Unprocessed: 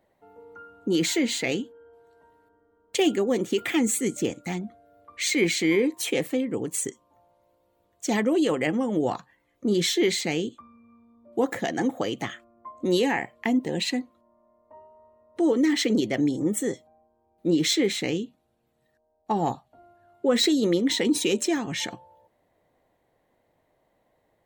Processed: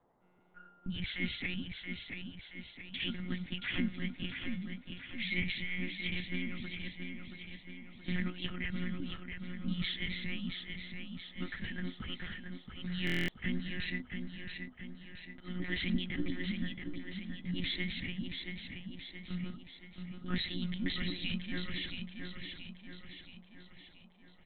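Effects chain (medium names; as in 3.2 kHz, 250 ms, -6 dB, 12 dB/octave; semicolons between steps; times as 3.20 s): FFT band-reject 300–1200 Hz; monotone LPC vocoder at 8 kHz 180 Hz; feedback delay 676 ms, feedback 52%, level -6 dB; band noise 130–1000 Hz -66 dBFS; buffer glitch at 13.05 s, samples 1024, times 9; trim -7.5 dB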